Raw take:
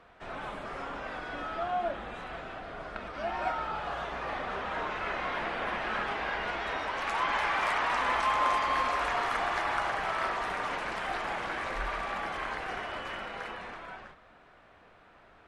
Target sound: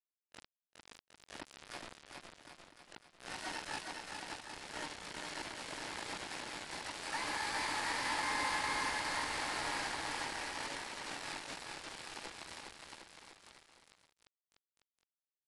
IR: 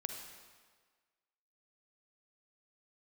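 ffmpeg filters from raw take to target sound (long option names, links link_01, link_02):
-filter_complex "[0:a]afwtdn=0.0126,asplit=3[link_01][link_02][link_03];[link_01]bandpass=frequency=300:width_type=q:width=8,volume=0dB[link_04];[link_02]bandpass=frequency=870:width_type=q:width=8,volume=-6dB[link_05];[link_03]bandpass=frequency=2240:width_type=q:width=8,volume=-9dB[link_06];[link_04][link_05][link_06]amix=inputs=3:normalize=0,aresample=11025,acrusher=bits=6:mix=0:aa=0.000001,aresample=44100,asplit=3[link_07][link_08][link_09];[link_08]asetrate=66075,aresample=44100,atempo=0.66742,volume=-9dB[link_10];[link_09]asetrate=88200,aresample=44100,atempo=0.5,volume=-1dB[link_11];[link_07][link_10][link_11]amix=inputs=3:normalize=0,aecho=1:1:410|758.5|1055|1307|1521:0.631|0.398|0.251|0.158|0.1"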